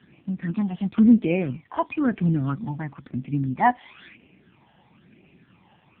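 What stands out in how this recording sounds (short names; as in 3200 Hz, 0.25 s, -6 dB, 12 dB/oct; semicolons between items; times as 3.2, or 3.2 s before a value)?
phasing stages 12, 1 Hz, lowest notch 400–1300 Hz; a quantiser's noise floor 10-bit, dither none; AMR-NB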